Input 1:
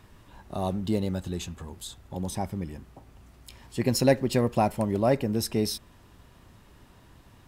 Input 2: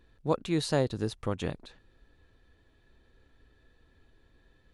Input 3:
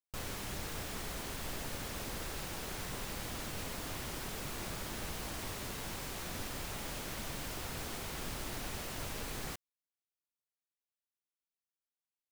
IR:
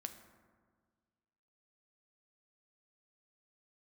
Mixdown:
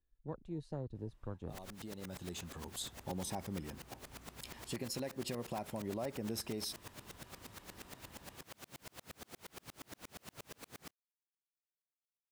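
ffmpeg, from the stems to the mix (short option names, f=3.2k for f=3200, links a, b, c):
-filter_complex "[0:a]acompressor=threshold=-27dB:ratio=6,highpass=f=240:p=1,adelay=950,volume=-1.5dB[a];[1:a]afwtdn=0.0158,acrossover=split=200[b][c];[c]acompressor=threshold=-28dB:ratio=6[d];[b][d]amix=inputs=2:normalize=0,volume=-13dB,asplit=2[e][f];[2:a]highpass=100,aeval=exprs='val(0)*pow(10,-40*if(lt(mod(-8.5*n/s,1),2*abs(-8.5)/1000),1-mod(-8.5*n/s,1)/(2*abs(-8.5)/1000),(mod(-8.5*n/s,1)-2*abs(-8.5)/1000)/(1-2*abs(-8.5)/1000))/20)':c=same,adelay=1350,volume=-2dB[g];[f]apad=whole_len=371732[h];[a][h]sidechaincompress=threshold=-57dB:ratio=10:attack=16:release=1090[i];[i][e]amix=inputs=2:normalize=0,lowshelf=f=63:g=11.5,alimiter=level_in=5dB:limit=-24dB:level=0:latency=1:release=490,volume=-5dB,volume=0dB[j];[g][j]amix=inputs=2:normalize=0"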